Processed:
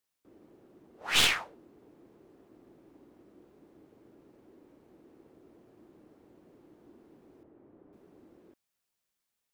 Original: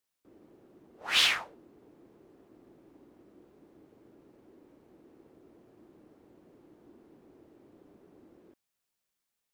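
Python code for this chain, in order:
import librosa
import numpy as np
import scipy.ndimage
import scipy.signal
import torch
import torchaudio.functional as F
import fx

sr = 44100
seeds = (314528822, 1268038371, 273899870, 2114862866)

y = fx.tracing_dist(x, sr, depth_ms=0.064)
y = fx.lowpass(y, sr, hz=1700.0, slope=12, at=(7.43, 7.93))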